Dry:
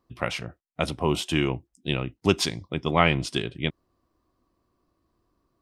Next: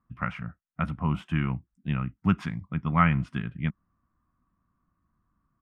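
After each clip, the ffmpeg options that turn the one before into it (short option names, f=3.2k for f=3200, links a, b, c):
-af "firequalizer=gain_entry='entry(110,0);entry(190,5);entry(370,-18);entry(1300,3);entry(4000,-26)':delay=0.05:min_phase=1"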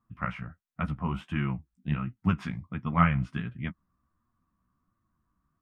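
-af "flanger=delay=8.4:depth=7.9:regen=17:speed=1.4:shape=sinusoidal,volume=1.5dB"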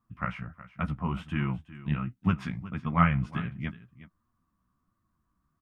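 -af "aecho=1:1:367:0.15"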